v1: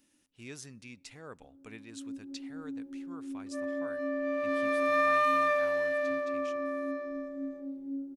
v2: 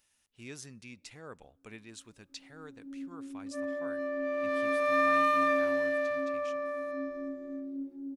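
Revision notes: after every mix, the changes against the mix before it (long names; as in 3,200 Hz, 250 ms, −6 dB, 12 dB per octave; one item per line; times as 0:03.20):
first sound: entry +0.90 s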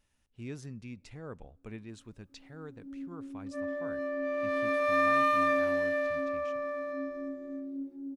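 speech: add spectral tilt −3 dB per octave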